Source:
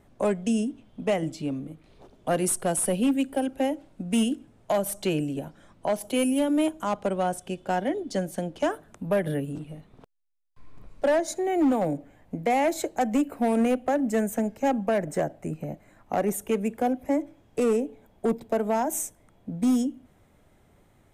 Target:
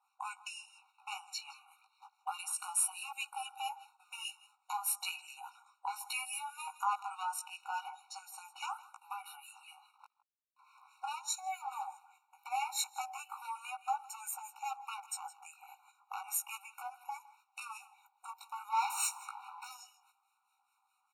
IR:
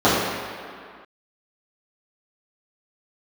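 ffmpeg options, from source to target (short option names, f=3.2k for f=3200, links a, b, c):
-filter_complex "[0:a]asplit=3[a][b][c];[a]afade=t=out:st=18.71:d=0.02[d];[b]asplit=2[e][f];[f]highpass=f=720:p=1,volume=28dB,asoftclip=type=tanh:threshold=-17dB[g];[e][g]amix=inputs=2:normalize=0,lowpass=f=2k:p=1,volume=-6dB,afade=t=in:st=18.71:d=0.02,afade=t=out:st=19.7:d=0.02[h];[c]afade=t=in:st=19.7:d=0.02[i];[d][h][i]amix=inputs=3:normalize=0,flanger=delay=16:depth=2.9:speed=0.35,agate=range=-10dB:threshold=-53dB:ratio=16:detection=peak,alimiter=level_in=3.5dB:limit=-24dB:level=0:latency=1:release=104,volume=-3.5dB,asplit=2[j][k];[k]aecho=0:1:161:0.119[l];[j][l]amix=inputs=2:normalize=0,acrossover=split=1200[m][n];[m]aeval=exprs='val(0)*(1-0.7/2+0.7/2*cos(2*PI*4.8*n/s))':c=same[o];[n]aeval=exprs='val(0)*(1-0.7/2-0.7/2*cos(2*PI*4.8*n/s))':c=same[p];[o][p]amix=inputs=2:normalize=0,afftfilt=real='re*eq(mod(floor(b*sr/1024/740),2),1)':imag='im*eq(mod(floor(b*sr/1024/740),2),1)':win_size=1024:overlap=0.75,volume=9.5dB"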